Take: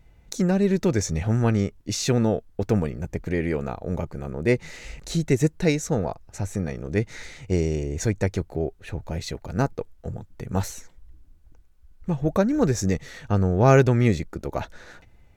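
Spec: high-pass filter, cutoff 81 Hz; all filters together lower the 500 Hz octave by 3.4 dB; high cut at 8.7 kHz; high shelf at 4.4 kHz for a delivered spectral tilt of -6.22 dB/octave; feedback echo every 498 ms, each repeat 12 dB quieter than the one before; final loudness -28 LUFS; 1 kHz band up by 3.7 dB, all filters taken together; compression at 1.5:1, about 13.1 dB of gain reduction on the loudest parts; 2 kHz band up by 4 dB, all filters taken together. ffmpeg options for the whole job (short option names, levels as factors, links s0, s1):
-af "highpass=81,lowpass=8700,equalizer=f=500:t=o:g=-6,equalizer=f=1000:t=o:g=6.5,equalizer=f=2000:t=o:g=4.5,highshelf=f=4400:g=-7,acompressor=threshold=0.00355:ratio=1.5,aecho=1:1:498|996|1494:0.251|0.0628|0.0157,volume=2.66"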